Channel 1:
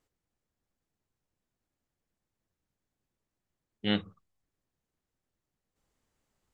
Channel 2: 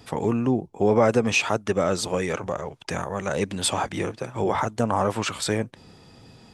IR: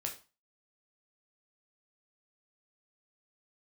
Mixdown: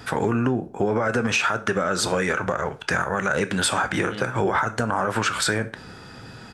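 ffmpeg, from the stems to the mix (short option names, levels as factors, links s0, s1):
-filter_complex "[0:a]alimiter=limit=0.1:level=0:latency=1,adelay=250,volume=0.841[s0];[1:a]equalizer=f=1500:t=o:w=0.51:g=14.5,alimiter=limit=0.188:level=0:latency=1:release=77,volume=1.41,asplit=3[s1][s2][s3];[s2]volume=0.631[s4];[s3]apad=whole_len=299298[s5];[s0][s5]sidechaincompress=threshold=0.0501:ratio=8:attack=16:release=252[s6];[2:a]atrim=start_sample=2205[s7];[s4][s7]afir=irnorm=-1:irlink=0[s8];[s6][s1][s8]amix=inputs=3:normalize=0,acompressor=threshold=0.1:ratio=2.5"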